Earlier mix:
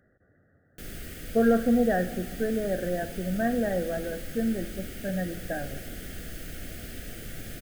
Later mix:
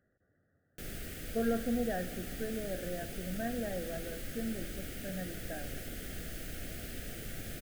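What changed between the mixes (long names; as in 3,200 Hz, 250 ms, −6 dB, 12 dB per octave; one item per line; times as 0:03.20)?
speech −10.5 dB
background: send −6.5 dB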